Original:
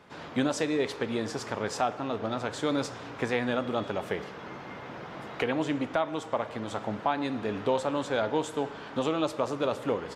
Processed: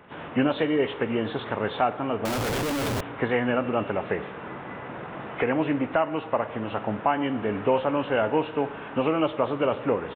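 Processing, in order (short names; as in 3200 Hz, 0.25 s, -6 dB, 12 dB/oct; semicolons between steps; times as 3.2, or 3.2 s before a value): nonlinear frequency compression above 1800 Hz 1.5:1; downsampling 8000 Hz; 2.25–3.01 Schmitt trigger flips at -41 dBFS; gain +4.5 dB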